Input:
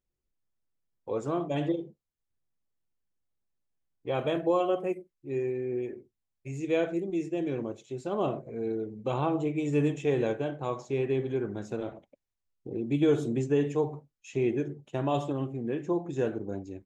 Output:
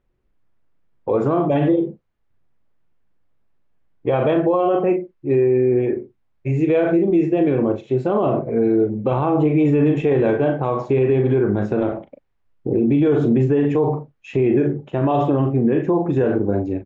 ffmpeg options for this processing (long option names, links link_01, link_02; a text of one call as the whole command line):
ffmpeg -i in.wav -filter_complex "[0:a]lowpass=2000,asplit=2[link_01][link_02];[link_02]adelay=39,volume=-8.5dB[link_03];[link_01][link_03]amix=inputs=2:normalize=0,alimiter=level_in=25.5dB:limit=-1dB:release=50:level=0:latency=1,volume=-8.5dB" out.wav